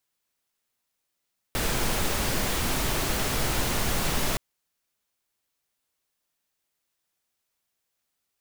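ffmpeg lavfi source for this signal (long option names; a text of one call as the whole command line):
ffmpeg -f lavfi -i "anoisesrc=color=pink:amplitude=0.257:duration=2.82:sample_rate=44100:seed=1" out.wav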